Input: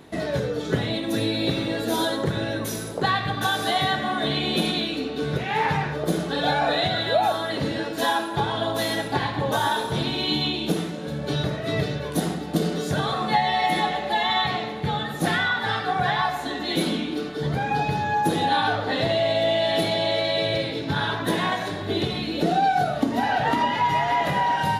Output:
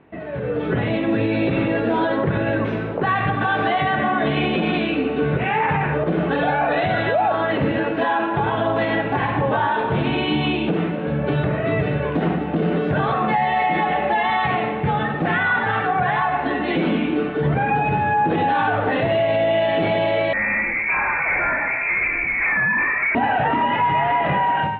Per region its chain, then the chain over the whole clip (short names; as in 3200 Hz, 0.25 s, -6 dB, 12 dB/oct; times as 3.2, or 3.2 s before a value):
20.33–23.15 overloaded stage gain 25.5 dB + inverted band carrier 2500 Hz
whole clip: Chebyshev low-pass 2700 Hz, order 4; limiter -20 dBFS; AGC gain up to 12.5 dB; gain -4 dB